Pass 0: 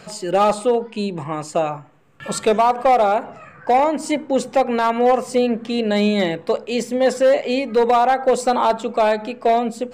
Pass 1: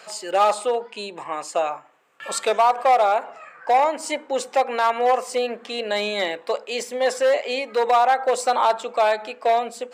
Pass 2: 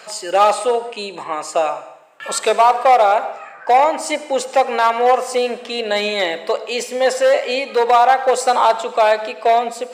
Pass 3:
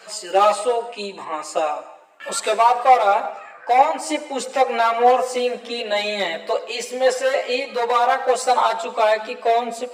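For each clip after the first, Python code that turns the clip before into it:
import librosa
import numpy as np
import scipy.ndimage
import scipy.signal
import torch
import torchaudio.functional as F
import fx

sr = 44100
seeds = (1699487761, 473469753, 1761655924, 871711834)

y1 = scipy.signal.sosfilt(scipy.signal.butter(2, 600.0, 'highpass', fs=sr, output='sos'), x)
y2 = fx.rev_freeverb(y1, sr, rt60_s=0.87, hf_ratio=1.0, predelay_ms=40, drr_db=13.5)
y2 = y2 * librosa.db_to_amplitude(5.0)
y3 = fx.chorus_voices(y2, sr, voices=6, hz=0.41, base_ms=13, depth_ms=3.0, mix_pct=55)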